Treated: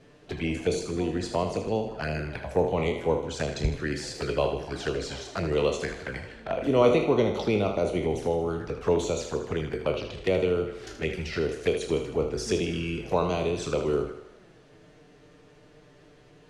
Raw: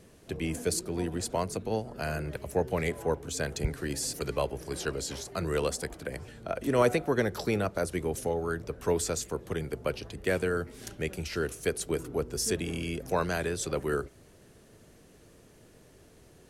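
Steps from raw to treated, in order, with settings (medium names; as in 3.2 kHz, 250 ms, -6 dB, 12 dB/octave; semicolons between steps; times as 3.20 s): spectral sustain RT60 0.34 s; low-pass 4 kHz 12 dB/octave; bass shelf 290 Hz -4 dB; touch-sensitive flanger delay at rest 8 ms, full sweep at -28.5 dBFS; on a send: thinning echo 78 ms, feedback 57%, high-pass 190 Hz, level -9 dB; on the sum: trim +5.5 dB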